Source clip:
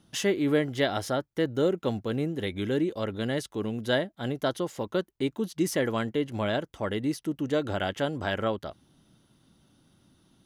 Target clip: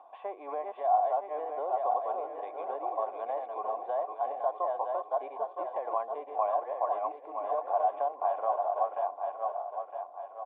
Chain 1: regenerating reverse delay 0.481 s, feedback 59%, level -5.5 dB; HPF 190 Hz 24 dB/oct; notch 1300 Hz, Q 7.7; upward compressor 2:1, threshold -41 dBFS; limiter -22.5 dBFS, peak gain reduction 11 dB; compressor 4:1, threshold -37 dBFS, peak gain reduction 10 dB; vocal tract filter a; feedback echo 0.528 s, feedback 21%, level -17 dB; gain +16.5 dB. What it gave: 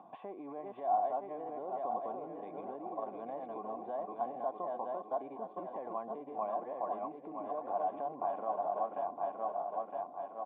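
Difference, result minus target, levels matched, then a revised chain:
250 Hz band +13.5 dB; compressor: peak gain reduction +5.5 dB
regenerating reverse delay 0.481 s, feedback 59%, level -5.5 dB; HPF 500 Hz 24 dB/oct; notch 1300 Hz, Q 7.7; upward compressor 2:1, threshold -41 dBFS; limiter -22.5 dBFS, peak gain reduction 8.5 dB; compressor 4:1, threshold -30.5 dBFS, peak gain reduction 4 dB; vocal tract filter a; feedback echo 0.528 s, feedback 21%, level -17 dB; gain +16.5 dB

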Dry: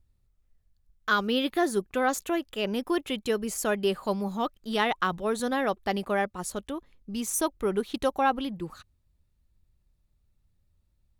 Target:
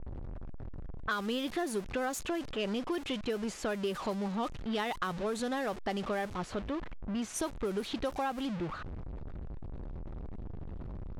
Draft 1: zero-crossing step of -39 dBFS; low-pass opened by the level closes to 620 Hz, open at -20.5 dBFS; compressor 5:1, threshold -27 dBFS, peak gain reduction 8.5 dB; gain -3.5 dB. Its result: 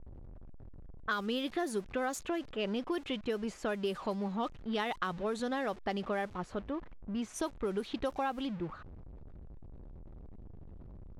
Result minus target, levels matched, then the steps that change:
zero-crossing step: distortion -7 dB
change: zero-crossing step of -30.5 dBFS

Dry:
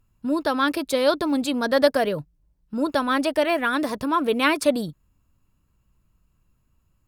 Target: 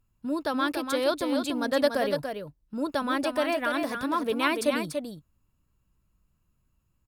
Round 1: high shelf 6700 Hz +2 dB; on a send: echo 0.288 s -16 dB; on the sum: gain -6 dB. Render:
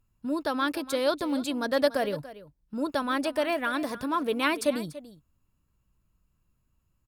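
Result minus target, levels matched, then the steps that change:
echo-to-direct -10 dB
change: echo 0.288 s -6 dB

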